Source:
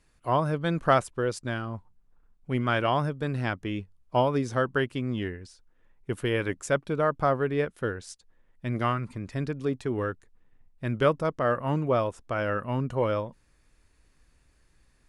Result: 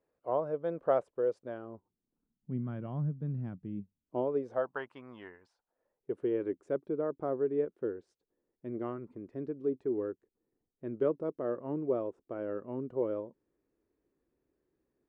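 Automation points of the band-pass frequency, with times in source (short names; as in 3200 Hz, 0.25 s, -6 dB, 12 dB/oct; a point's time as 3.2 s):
band-pass, Q 2.8
1.52 s 510 Hz
2.61 s 170 Hz
3.72 s 170 Hz
4.84 s 950 Hz
5.41 s 950 Hz
6.27 s 370 Hz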